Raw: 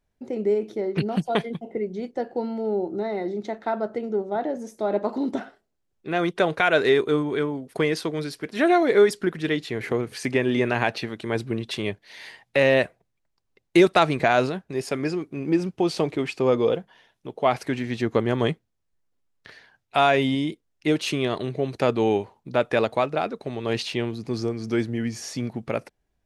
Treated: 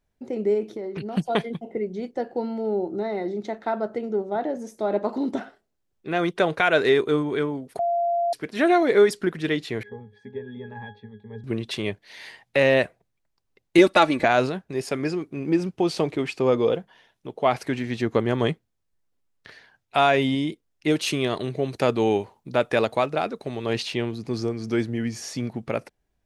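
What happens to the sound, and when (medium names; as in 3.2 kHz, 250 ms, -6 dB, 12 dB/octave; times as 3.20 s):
0.74–1.17 s: compression, threshold -28 dBFS
7.79–8.33 s: bleep 689 Hz -20 dBFS
9.83–11.44 s: pitch-class resonator G#, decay 0.19 s
13.78–14.25 s: comb 3.5 ms
20.90–23.66 s: treble shelf 5.8 kHz +6 dB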